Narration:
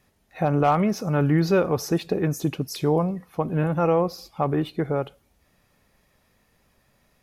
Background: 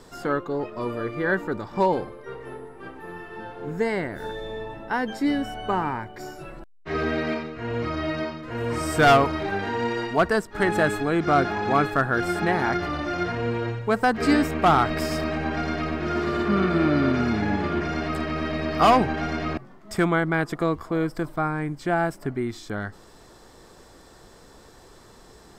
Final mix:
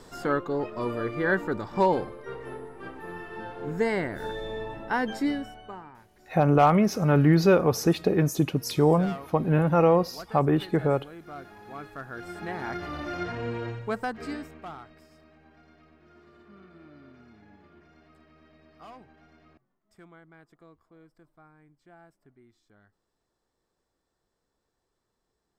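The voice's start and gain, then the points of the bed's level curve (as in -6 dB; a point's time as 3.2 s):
5.95 s, +1.0 dB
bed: 5.18 s -1 dB
5.92 s -22 dB
11.59 s -22 dB
13.03 s -6 dB
13.83 s -6 dB
15.07 s -30.5 dB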